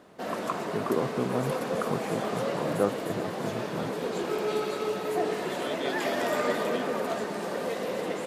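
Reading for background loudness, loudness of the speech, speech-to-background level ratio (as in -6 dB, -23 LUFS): -31.0 LUFS, -33.5 LUFS, -2.5 dB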